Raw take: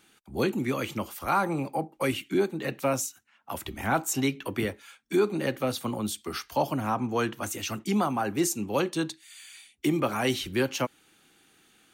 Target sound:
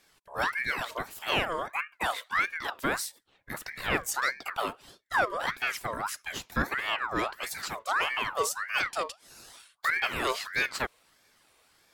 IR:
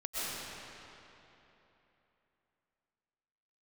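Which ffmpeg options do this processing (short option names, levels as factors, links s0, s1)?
-af "aeval=exprs='0.224*(cos(1*acos(clip(val(0)/0.224,-1,1)))-cos(1*PI/2))+0.0224*(cos(2*acos(clip(val(0)/0.224,-1,1)))-cos(2*PI/2))':c=same,aeval=exprs='val(0)*sin(2*PI*1400*n/s+1400*0.45/1.6*sin(2*PI*1.6*n/s))':c=same"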